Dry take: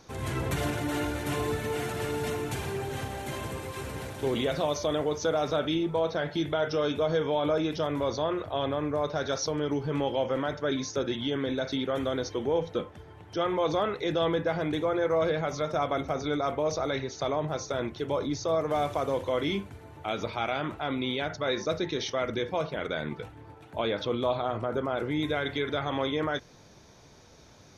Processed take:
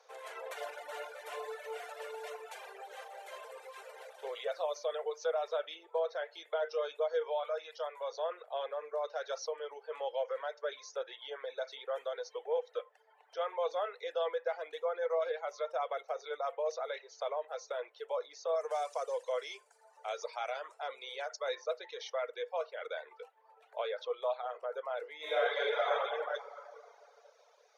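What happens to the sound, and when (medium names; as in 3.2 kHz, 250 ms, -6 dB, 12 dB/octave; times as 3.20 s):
7.43–8.12 s: high-pass 550 Hz
18.55–21.55 s: high-order bell 6.9 kHz +13 dB 1.3 oct
25.16–25.93 s: reverb throw, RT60 2.7 s, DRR -9.5 dB
whole clip: reverb removal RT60 1 s; Chebyshev high-pass 460 Hz, order 6; tilt EQ -2 dB/octave; trim -6 dB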